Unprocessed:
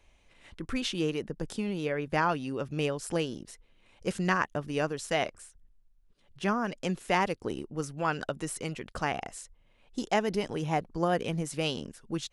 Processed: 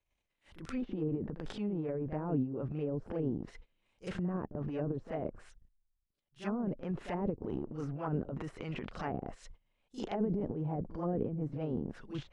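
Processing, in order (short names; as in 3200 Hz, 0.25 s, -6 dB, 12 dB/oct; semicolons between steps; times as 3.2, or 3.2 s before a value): gate -54 dBFS, range -22 dB; transient shaper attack -8 dB, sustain +11 dB; on a send: reverse echo 39 ms -10.5 dB; on the sum: treble ducked by the level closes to 430 Hz, closed at -26 dBFS; gain -3.5 dB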